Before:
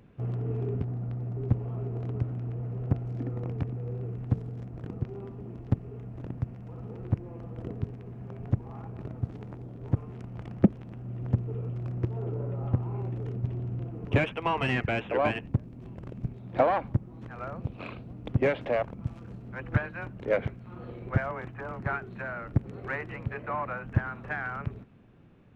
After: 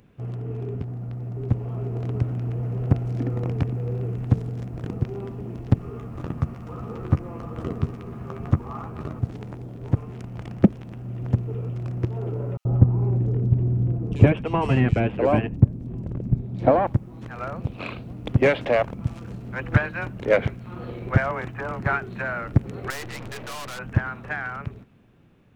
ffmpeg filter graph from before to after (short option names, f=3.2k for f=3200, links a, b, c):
-filter_complex "[0:a]asettb=1/sr,asplit=3[a][b][c];[a]atrim=end=5.794[d];[b]atrim=start=5.79:end=9.19,asetpts=PTS-STARTPTS,afade=t=in:d=0.004:c=qsin,afade=t=out:st=3.396:d=0.004:c=qsin,equalizer=f=1.2k:w=4.6:g=12,asplit=2[e][f];[f]adelay=13,volume=-7dB[g];[e][g]amix=inputs=2:normalize=0,atrim=end_sample=149940[h];[c]atrim=start=9.186[i];[d][h]acrossfade=d=0.004:c1=hsin:c2=qsin[j];[j][i]acrossfade=d=0.004:c1=qsin:c2=hsin,asettb=1/sr,asplit=3[k][l][m];[k]atrim=end=12.574[n];[l]atrim=start=12.57:end=16.87,asetpts=PTS-STARTPTS,afade=t=in:d=0.004:c=qsin,afade=t=out:st=4.296:d=0.004:c=qsin,tiltshelf=f=670:g=8,acrossover=split=3400[o][p];[o]adelay=80[q];[q][p]amix=inputs=2:normalize=0,atrim=end_sample=189630[r];[m]atrim=start=16.866[s];[n][r]acrossfade=d=0.004:c1=hsin:c2=qsin[t];[t][s]acrossfade=d=0.004:c1=qsin:c2=hsin,asettb=1/sr,asplit=3[u][v][w];[u]atrim=end=22.904[x];[v]atrim=start=22.9:end=23.79,asetpts=PTS-STARTPTS,afade=t=in:d=0.004:c=qsin,afade=t=out:st=0.886:d=0.004:c=qsin,acontrast=33,aeval=exprs='(tanh(112*val(0)+0.65)-tanh(0.65))/112':c=same[y];[w]atrim=start=23.786[z];[x][y]acrossfade=d=0.004:c1=hsin:c2=qsin[aa];[aa][z]acrossfade=d=0.004:c1=qsin:c2=hsin,highshelf=f=3.6k:g=9,dynaudnorm=f=170:g=21:m=8dB"